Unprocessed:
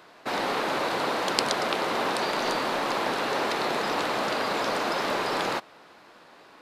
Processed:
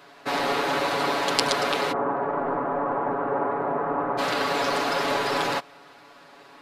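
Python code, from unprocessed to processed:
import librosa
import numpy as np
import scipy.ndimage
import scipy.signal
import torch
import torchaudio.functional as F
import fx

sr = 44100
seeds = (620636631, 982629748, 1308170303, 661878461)

y = fx.lowpass(x, sr, hz=1300.0, slope=24, at=(1.91, 4.17), fade=0.02)
y = y + 0.91 * np.pad(y, (int(7.1 * sr / 1000.0), 0))[:len(y)]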